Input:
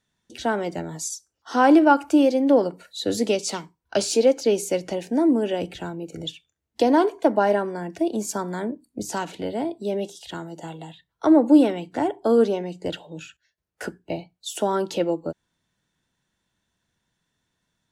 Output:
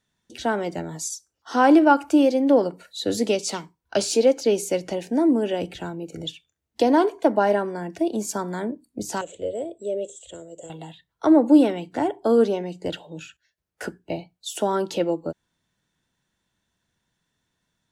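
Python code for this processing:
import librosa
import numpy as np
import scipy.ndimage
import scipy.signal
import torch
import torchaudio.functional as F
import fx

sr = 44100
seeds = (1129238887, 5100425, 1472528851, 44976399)

y = fx.curve_eq(x, sr, hz=(100.0, 150.0, 300.0, 550.0, 850.0, 1700.0, 3300.0, 5100.0, 7600.0, 12000.0), db=(0, -13, -10, 7, -20, -16, -6, -22, 10, -28), at=(9.21, 10.7))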